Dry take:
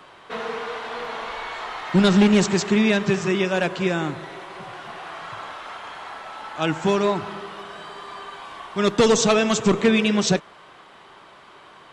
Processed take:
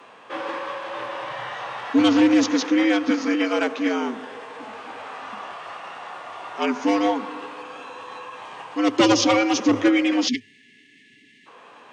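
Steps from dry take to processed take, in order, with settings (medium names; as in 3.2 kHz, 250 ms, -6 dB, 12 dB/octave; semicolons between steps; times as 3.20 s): frequency shift +100 Hz; spectral selection erased 10.28–11.46 s, 440–1700 Hz; formant shift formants -3 st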